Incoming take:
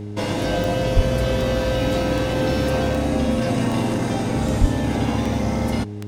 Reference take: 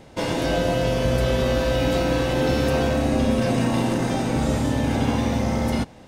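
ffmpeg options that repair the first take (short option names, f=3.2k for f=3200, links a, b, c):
-filter_complex "[0:a]adeclick=t=4,bandreject=f=103.4:t=h:w=4,bandreject=f=206.8:t=h:w=4,bandreject=f=310.2:t=h:w=4,bandreject=f=413.6:t=h:w=4,asplit=3[a][b][c];[a]afade=t=out:st=0.95:d=0.02[d];[b]highpass=f=140:w=0.5412,highpass=f=140:w=1.3066,afade=t=in:st=0.95:d=0.02,afade=t=out:st=1.07:d=0.02[e];[c]afade=t=in:st=1.07:d=0.02[f];[d][e][f]amix=inputs=3:normalize=0,asplit=3[g][h][i];[g]afade=t=out:st=4.6:d=0.02[j];[h]highpass=f=140:w=0.5412,highpass=f=140:w=1.3066,afade=t=in:st=4.6:d=0.02,afade=t=out:st=4.72:d=0.02[k];[i]afade=t=in:st=4.72:d=0.02[l];[j][k][l]amix=inputs=3:normalize=0"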